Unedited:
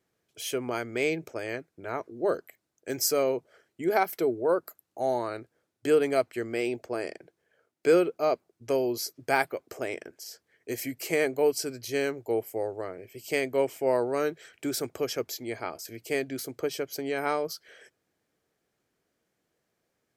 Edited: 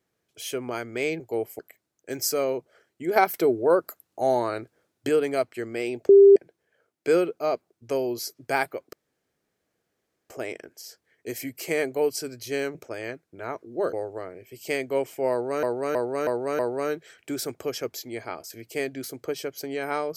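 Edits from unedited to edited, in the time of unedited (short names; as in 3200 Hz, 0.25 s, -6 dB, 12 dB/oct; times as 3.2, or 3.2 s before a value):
1.2–2.38 swap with 12.17–12.56
3.95–5.88 gain +5 dB
6.88–7.15 bleep 397 Hz -8.5 dBFS
9.72 insert room tone 1.37 s
13.94–14.26 loop, 5 plays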